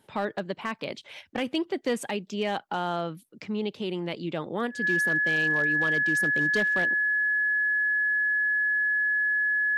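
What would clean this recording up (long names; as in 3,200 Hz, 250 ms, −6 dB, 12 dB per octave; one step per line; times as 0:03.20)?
clipped peaks rebuilt −18.5 dBFS
notch filter 1,700 Hz, Q 30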